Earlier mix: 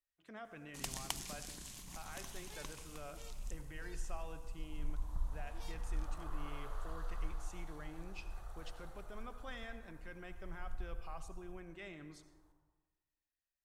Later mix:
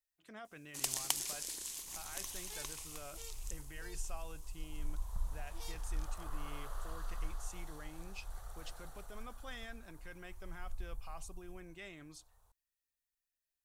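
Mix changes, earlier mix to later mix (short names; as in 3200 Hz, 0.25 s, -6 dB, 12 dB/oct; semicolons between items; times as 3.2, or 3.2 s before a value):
speech: send off; first sound: add resonant low shelf 270 Hz -11 dB, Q 1.5; master: add high shelf 4400 Hz +11 dB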